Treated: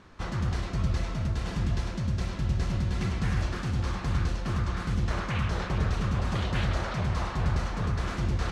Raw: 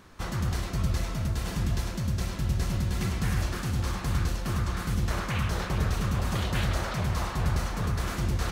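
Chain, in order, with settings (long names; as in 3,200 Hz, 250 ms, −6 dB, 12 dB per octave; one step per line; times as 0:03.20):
high-frequency loss of the air 84 metres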